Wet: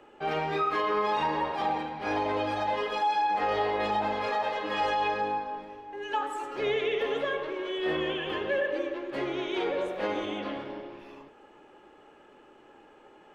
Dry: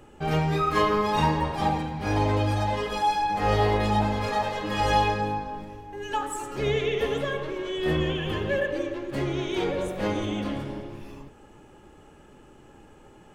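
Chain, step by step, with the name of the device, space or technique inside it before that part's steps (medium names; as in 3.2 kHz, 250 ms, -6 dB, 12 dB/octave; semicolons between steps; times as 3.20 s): DJ mixer with the lows and highs turned down (three-band isolator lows -20 dB, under 290 Hz, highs -16 dB, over 4.4 kHz; peak limiter -19.5 dBFS, peak gain reduction 8 dB); 10.38–10.99 s: low-pass 6.2 kHz 12 dB/octave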